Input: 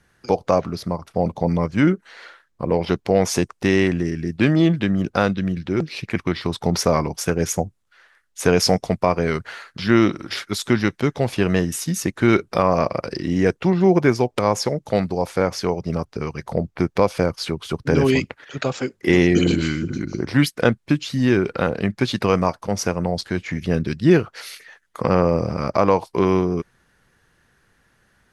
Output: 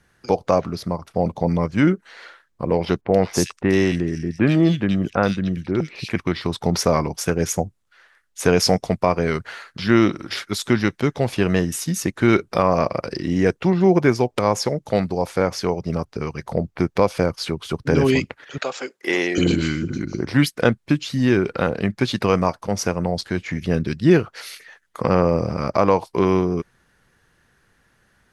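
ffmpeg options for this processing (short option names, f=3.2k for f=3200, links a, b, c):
-filter_complex "[0:a]asettb=1/sr,asplit=3[a][b][c];[a]atrim=end=3.014[d];[b]atrim=start=3.01:end=6.1,asetpts=PTS-STARTPTS,afade=t=in:d=0.004:c=qsin,afade=t=out:st=3.086:d=0.004:c=qsin,acrossover=split=2400[e][f];[f]adelay=80[g];[e][g]amix=inputs=2:normalize=0,atrim=end_sample=136269[h];[c]atrim=start=6.096[i];[d][h]acrossfade=d=0.004:c1=hsin:c2=qsin[j];[j][i]acrossfade=d=0.004:c1=qsin:c2=hsin,asettb=1/sr,asplit=3[k][l][m];[k]atrim=end=18.584[n];[l]atrim=start=18.58:end=19.38,asetpts=PTS-STARTPTS,afade=t=in:d=0.004:c=qsin,afade=t=out:st=0.796:d=0.004:c=qsin,highpass=480[o];[m]atrim=start=19.376[p];[n][o]acrossfade=d=0.004:c1=hsin:c2=qsin[q];[q][p]acrossfade=d=0.004:c1=qsin:c2=hsin"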